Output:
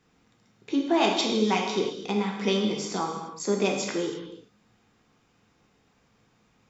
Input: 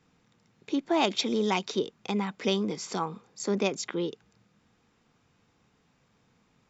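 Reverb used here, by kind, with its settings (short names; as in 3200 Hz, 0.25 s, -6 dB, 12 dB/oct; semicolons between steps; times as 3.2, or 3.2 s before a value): non-linear reverb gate 0.37 s falling, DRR 0 dB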